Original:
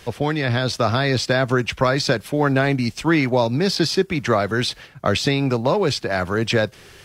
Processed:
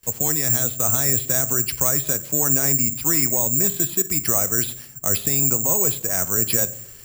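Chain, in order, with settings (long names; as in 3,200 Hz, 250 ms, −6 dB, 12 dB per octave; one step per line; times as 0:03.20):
noise gate with hold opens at −35 dBFS
low-shelf EQ 88 Hz +8.5 dB
brickwall limiter −9.5 dBFS, peak gain reduction 4.5 dB
on a send at −14 dB: convolution reverb RT60 0.70 s, pre-delay 3 ms
on the sum: bad sample-rate conversion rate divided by 6×, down filtered, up zero stuff
level −8.5 dB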